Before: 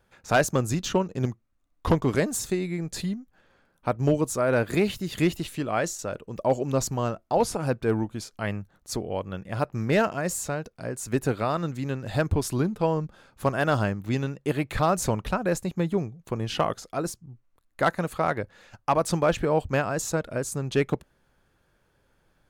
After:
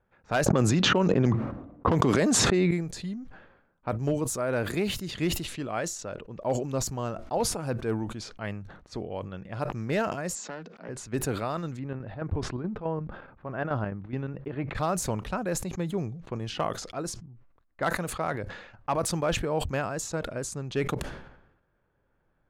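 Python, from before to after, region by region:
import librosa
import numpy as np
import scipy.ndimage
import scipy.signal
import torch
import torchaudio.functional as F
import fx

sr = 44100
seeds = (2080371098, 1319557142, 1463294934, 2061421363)

y = fx.chain(x, sr, fx.highpass(hz=130.0, slope=12),
    fx.env_lowpass(base_hz=440.0, full_db=-19.0),
    fx.env_flatten(amount_pct=100), at=(0.46, 2.71))
y = fx.chain(y, sr, fx.cheby1_bandpass(low_hz=170.0, high_hz=7500.0, order=5),
    fx.dynamic_eq(hz=760.0, q=0.9, threshold_db=-40.0, ratio=4.0, max_db=-4),
    fx.doppler_dist(depth_ms=0.27), at=(10.35, 10.89))
y = fx.chain(y, sr, fx.lowpass(hz=1900.0, slope=12),
    fx.chopper(hz=4.7, depth_pct=65, duty_pct=65), at=(11.79, 14.75))
y = fx.env_lowpass(y, sr, base_hz=1800.0, full_db=-22.5)
y = fx.sustainer(y, sr, db_per_s=65.0)
y = y * 10.0 ** (-5.5 / 20.0)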